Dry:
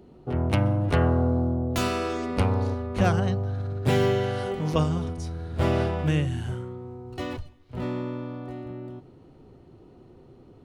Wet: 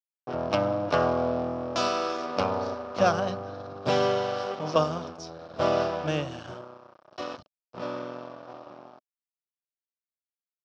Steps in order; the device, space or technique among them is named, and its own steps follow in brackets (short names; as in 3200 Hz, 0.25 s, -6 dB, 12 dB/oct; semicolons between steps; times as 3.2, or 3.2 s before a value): blown loudspeaker (crossover distortion -36 dBFS; speaker cabinet 240–5600 Hz, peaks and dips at 240 Hz -4 dB, 390 Hz -5 dB, 610 Hz +8 dB, 1200 Hz +6 dB, 2000 Hz -8 dB, 5400 Hz +10 dB); gain +1.5 dB